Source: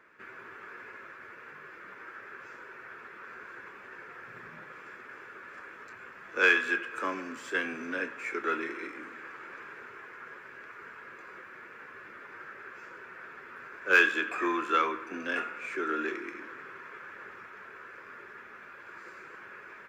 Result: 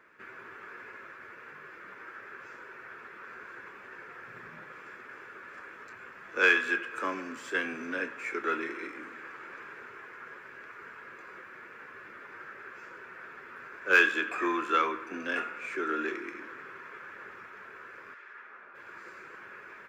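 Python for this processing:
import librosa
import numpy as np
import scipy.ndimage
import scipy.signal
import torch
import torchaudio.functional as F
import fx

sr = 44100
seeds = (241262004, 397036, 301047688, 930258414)

y = fx.bandpass_q(x, sr, hz=fx.line((18.13, 3200.0), (18.74, 620.0)), q=0.64, at=(18.13, 18.74), fade=0.02)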